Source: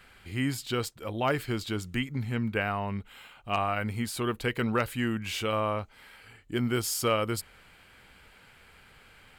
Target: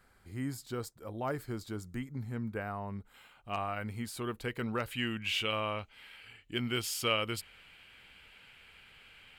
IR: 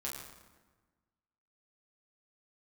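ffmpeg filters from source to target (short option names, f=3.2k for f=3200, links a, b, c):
-af "asetnsamples=n=441:p=0,asendcmd='3.14 equalizer g -2;4.91 equalizer g 11.5',equalizer=f=2.8k:t=o:w=0.95:g=-13,volume=-7dB"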